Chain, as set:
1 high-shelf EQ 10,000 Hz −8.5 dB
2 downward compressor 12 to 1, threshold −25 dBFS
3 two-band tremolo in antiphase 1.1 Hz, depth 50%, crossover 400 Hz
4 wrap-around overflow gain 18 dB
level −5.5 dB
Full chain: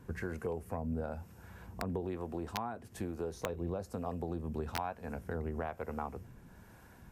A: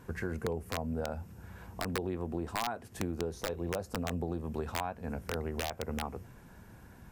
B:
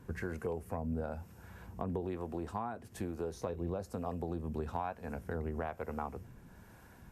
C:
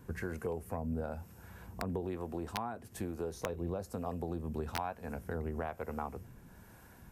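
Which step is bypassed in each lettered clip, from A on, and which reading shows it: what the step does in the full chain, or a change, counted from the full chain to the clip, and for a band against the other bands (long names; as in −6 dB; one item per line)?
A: 3, change in crest factor −2.5 dB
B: 4, distortion level −15 dB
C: 1, 8 kHz band +1.5 dB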